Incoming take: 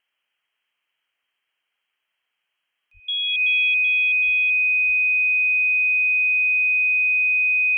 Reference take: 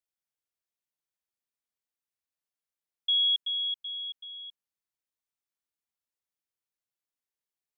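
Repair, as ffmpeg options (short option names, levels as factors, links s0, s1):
-filter_complex "[0:a]bandreject=f=2500:w=30,asplit=3[s0][s1][s2];[s0]afade=t=out:st=2.93:d=0.02[s3];[s1]highpass=f=140:w=0.5412,highpass=f=140:w=1.3066,afade=t=in:st=2.93:d=0.02,afade=t=out:st=3.05:d=0.02[s4];[s2]afade=t=in:st=3.05:d=0.02[s5];[s3][s4][s5]amix=inputs=3:normalize=0,asplit=3[s6][s7][s8];[s6]afade=t=out:st=4.25:d=0.02[s9];[s7]highpass=f=140:w=0.5412,highpass=f=140:w=1.3066,afade=t=in:st=4.25:d=0.02,afade=t=out:st=4.37:d=0.02[s10];[s8]afade=t=in:st=4.37:d=0.02[s11];[s9][s10][s11]amix=inputs=3:normalize=0,asplit=3[s12][s13][s14];[s12]afade=t=out:st=4.86:d=0.02[s15];[s13]highpass=f=140:w=0.5412,highpass=f=140:w=1.3066,afade=t=in:st=4.86:d=0.02,afade=t=out:st=4.98:d=0.02[s16];[s14]afade=t=in:st=4.98:d=0.02[s17];[s15][s16][s17]amix=inputs=3:normalize=0,agate=range=0.0891:threshold=0.000282"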